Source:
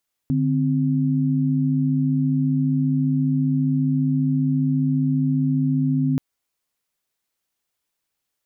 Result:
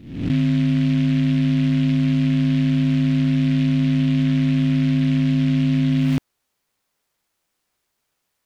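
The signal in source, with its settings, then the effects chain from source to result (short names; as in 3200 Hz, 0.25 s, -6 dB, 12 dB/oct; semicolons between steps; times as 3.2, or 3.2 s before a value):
chord D3/C4 sine, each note -20 dBFS 5.88 s
spectral swells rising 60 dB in 0.65 s; in parallel at -4 dB: soft clip -24.5 dBFS; on the sum: noise-modulated delay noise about 2400 Hz, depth 0.067 ms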